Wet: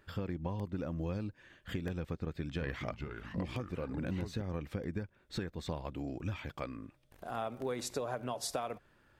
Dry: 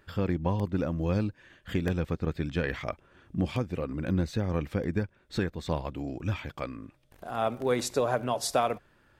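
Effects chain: compressor, threshold -30 dBFS, peak gain reduction 9.5 dB; 2.17–4.42 echoes that change speed 0.381 s, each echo -3 st, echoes 2, each echo -6 dB; gain -3.5 dB

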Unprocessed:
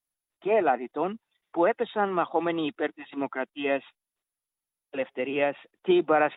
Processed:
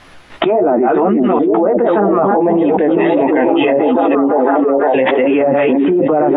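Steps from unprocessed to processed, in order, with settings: reverse delay 0.197 s, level -12 dB; treble ducked by the level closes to 650 Hz, closed at -21 dBFS; LPF 2600 Hz 12 dB/oct; flange 1.5 Hz, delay 10 ms, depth 6.1 ms, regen +3%; 2.37–5.09 Butterworth band-stop 1300 Hz, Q 2.2; delay with a stepping band-pass 0.502 s, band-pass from 240 Hz, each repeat 0.7 oct, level -4.5 dB; maximiser +25 dB; fast leveller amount 100%; gain -7 dB

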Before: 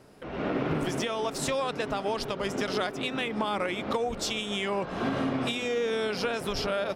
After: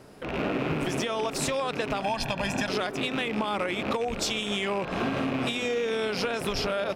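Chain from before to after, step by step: rattling part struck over -39 dBFS, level -28 dBFS; 2.02–2.69 comb 1.2 ms, depth 77%; compressor, threshold -29 dBFS, peak gain reduction 6 dB; gain +4.5 dB

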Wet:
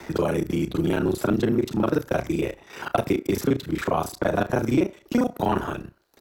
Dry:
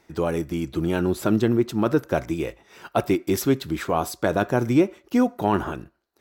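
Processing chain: local time reversal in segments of 31 ms; doubler 32 ms -14 dB; three-band squash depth 70%; gain -1 dB

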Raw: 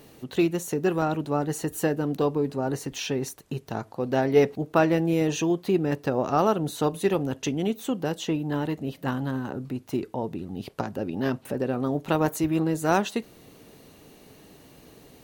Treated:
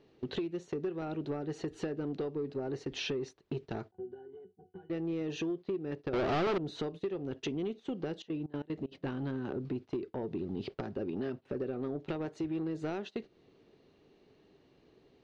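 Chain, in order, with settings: bell 380 Hz +8.5 dB 0.42 oct; compressor 16:1, threshold -30 dBFS, peak gain reduction 21 dB; gate -41 dBFS, range -15 dB; 8.06–8.91 step gate "xx.x.xx." 188 bpm -24 dB; soft clip -26.5 dBFS, distortion -17 dB; 3.91–4.9 octave resonator F#, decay 0.18 s; dynamic EQ 1000 Hz, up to -5 dB, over -57 dBFS, Q 2.7; 6.13–6.58 sample leveller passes 5; LPF 4800 Hz 24 dB/oct

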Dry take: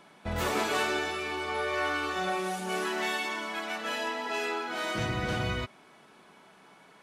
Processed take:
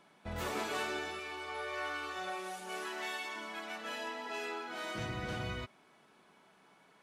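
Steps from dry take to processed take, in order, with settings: 1.19–3.36 bell 160 Hz -10.5 dB 1.7 oct; gain -8 dB

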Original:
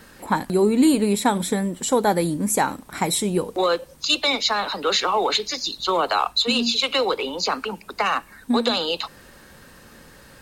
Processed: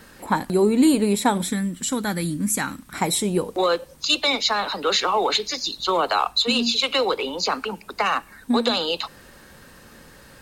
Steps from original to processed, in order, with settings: 1.49–2.94 band shelf 600 Hz -11.5 dB; reverb RT60 0.20 s, pre-delay 97 ms, DRR 35 dB

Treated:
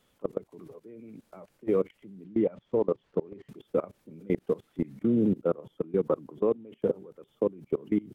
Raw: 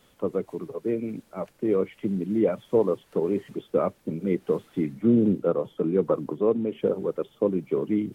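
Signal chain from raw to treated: level quantiser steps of 23 dB; 2.24–3.49 air absorption 120 m

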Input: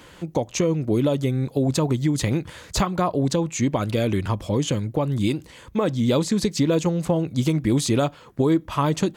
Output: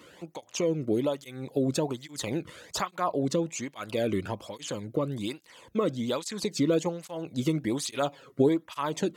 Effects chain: 7.94–8.49 comb 7.3 ms, depth 63%; tape flanging out of phase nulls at 1.2 Hz, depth 1.3 ms; gain -3 dB

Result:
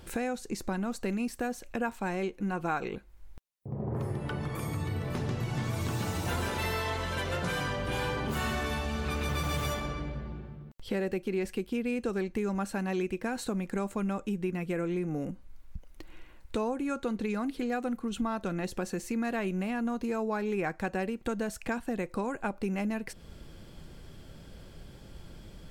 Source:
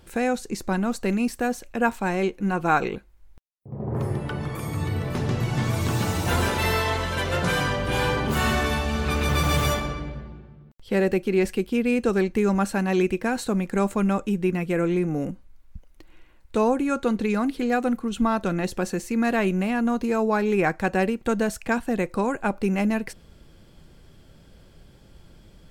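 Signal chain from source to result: compressor 2.5:1, threshold -37 dBFS, peak gain reduction 14.5 dB; gain +2.5 dB

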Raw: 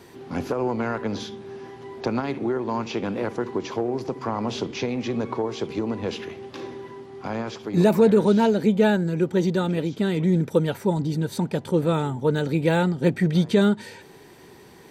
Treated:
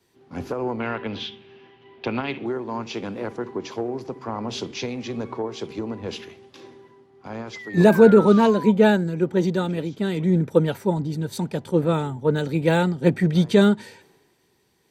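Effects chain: 0.8–2.46 synth low-pass 2900 Hz, resonance Q 3.3; 7.53–8.72 painted sound fall 930–2100 Hz -34 dBFS; three-band expander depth 70%

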